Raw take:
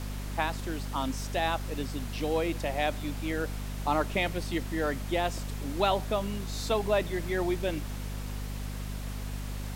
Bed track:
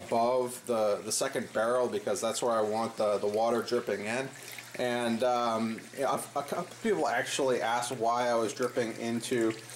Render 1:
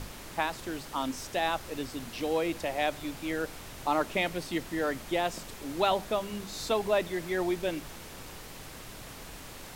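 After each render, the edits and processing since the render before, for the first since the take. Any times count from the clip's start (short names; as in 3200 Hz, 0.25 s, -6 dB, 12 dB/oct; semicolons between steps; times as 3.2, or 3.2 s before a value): notches 50/100/150/200/250 Hz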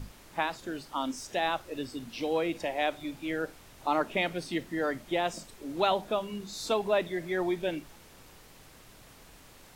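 noise print and reduce 9 dB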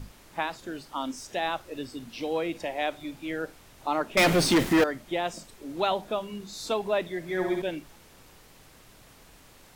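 4.17–4.84 sample leveller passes 5; 7.21–7.62 flutter echo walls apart 11.1 m, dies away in 0.81 s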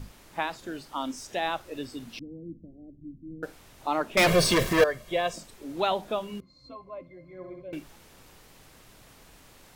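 2.19–3.43 inverse Chebyshev low-pass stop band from 1200 Hz, stop band 70 dB; 4.27–5.36 comb 1.8 ms, depth 74%; 6.4–7.73 octave resonator C, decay 0.12 s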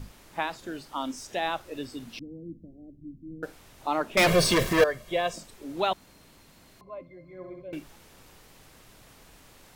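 5.93–6.81 room tone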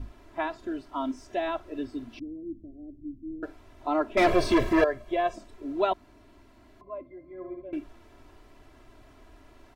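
LPF 1100 Hz 6 dB/oct; comb 3 ms, depth 86%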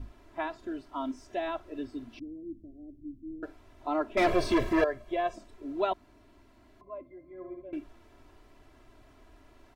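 gain -3.5 dB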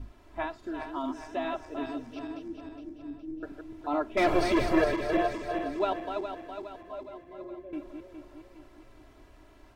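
regenerating reverse delay 0.207 s, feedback 70%, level -6 dB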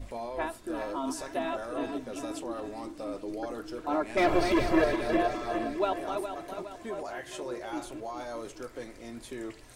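add bed track -10.5 dB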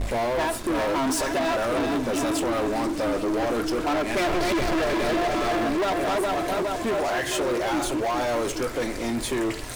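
compressor 3:1, threshold -31 dBFS, peak gain reduction 9.5 dB; sample leveller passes 5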